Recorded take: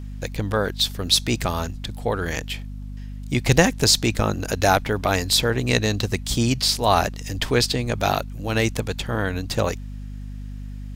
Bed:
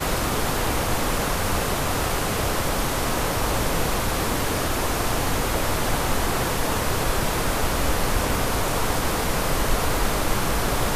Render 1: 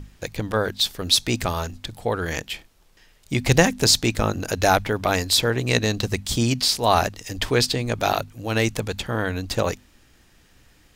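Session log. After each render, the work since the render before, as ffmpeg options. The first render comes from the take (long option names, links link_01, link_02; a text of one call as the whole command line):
ffmpeg -i in.wav -af "bandreject=frequency=50:width_type=h:width=6,bandreject=frequency=100:width_type=h:width=6,bandreject=frequency=150:width_type=h:width=6,bandreject=frequency=200:width_type=h:width=6,bandreject=frequency=250:width_type=h:width=6" out.wav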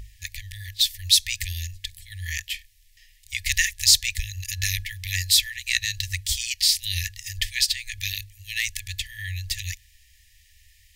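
ffmpeg -i in.wav -af "afftfilt=real='re*(1-between(b*sr/4096,100,1700))':imag='im*(1-between(b*sr/4096,100,1700))':win_size=4096:overlap=0.75,highshelf=frequency=8900:gain=6.5" out.wav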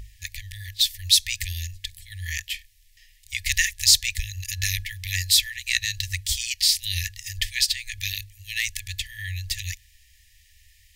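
ffmpeg -i in.wav -af anull out.wav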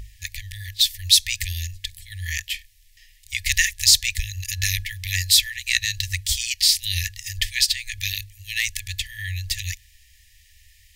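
ffmpeg -i in.wav -af "volume=2.5dB,alimiter=limit=-1dB:level=0:latency=1" out.wav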